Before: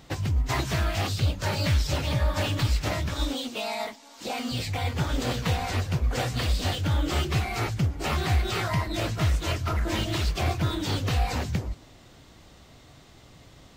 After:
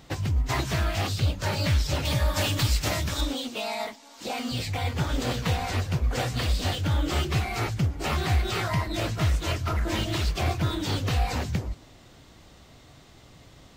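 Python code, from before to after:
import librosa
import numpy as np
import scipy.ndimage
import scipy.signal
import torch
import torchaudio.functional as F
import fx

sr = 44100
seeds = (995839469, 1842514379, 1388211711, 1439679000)

y = fx.high_shelf(x, sr, hz=4200.0, db=9.5, at=(2.05, 3.21))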